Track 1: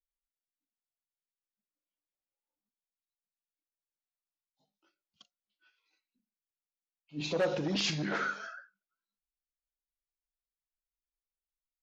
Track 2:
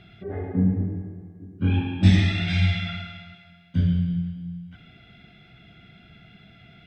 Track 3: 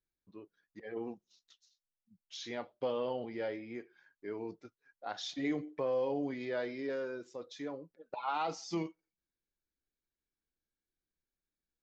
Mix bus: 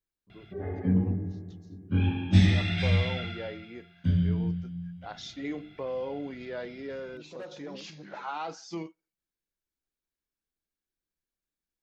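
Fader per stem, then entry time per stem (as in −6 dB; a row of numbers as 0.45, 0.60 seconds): −13.5, −3.5, −1.0 decibels; 0.00, 0.30, 0.00 seconds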